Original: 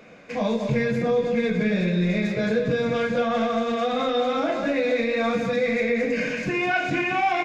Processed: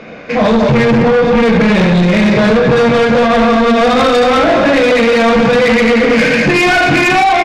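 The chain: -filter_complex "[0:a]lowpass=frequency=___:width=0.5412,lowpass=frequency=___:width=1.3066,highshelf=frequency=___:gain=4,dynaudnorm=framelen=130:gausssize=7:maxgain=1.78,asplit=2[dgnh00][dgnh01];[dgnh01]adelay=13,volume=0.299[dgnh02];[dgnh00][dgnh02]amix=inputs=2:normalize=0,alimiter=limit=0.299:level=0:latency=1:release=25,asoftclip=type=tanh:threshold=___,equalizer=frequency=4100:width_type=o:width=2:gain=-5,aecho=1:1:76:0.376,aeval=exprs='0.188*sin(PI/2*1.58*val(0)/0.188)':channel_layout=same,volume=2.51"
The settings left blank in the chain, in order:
5300, 5300, 2000, 0.141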